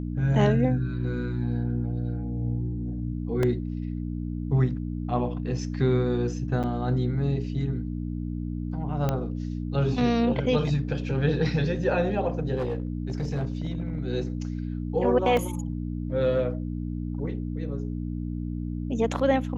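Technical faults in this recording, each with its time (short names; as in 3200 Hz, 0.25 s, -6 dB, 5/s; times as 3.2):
hum 60 Hz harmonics 5 -31 dBFS
3.43 gap 2.5 ms
6.63–6.64 gap 7.3 ms
9.09 pop -13 dBFS
12.56–14 clipped -23.5 dBFS
15.37 gap 3 ms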